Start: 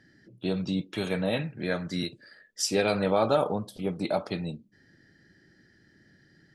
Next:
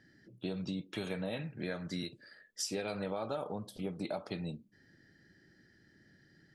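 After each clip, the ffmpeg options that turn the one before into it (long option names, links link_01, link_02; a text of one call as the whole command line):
ffmpeg -i in.wav -af "acompressor=threshold=-30dB:ratio=6,volume=-4dB" out.wav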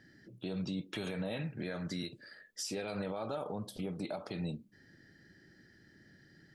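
ffmpeg -i in.wav -af "alimiter=level_in=8dB:limit=-24dB:level=0:latency=1:release=59,volume=-8dB,volume=3dB" out.wav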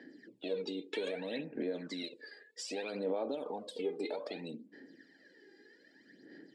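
ffmpeg -i in.wav -af "aphaser=in_gain=1:out_gain=1:delay=2.5:decay=0.68:speed=0.63:type=sinusoidal,acompressor=threshold=-33dB:ratio=6,highpass=frequency=260:width=0.5412,highpass=frequency=260:width=1.3066,equalizer=frequency=270:width_type=q:width=4:gain=7,equalizer=frequency=470:width_type=q:width=4:gain=7,equalizer=frequency=1300:width_type=q:width=4:gain=-10,equalizer=frequency=6000:width_type=q:width=4:gain=-9,lowpass=frequency=7600:width=0.5412,lowpass=frequency=7600:width=1.3066" out.wav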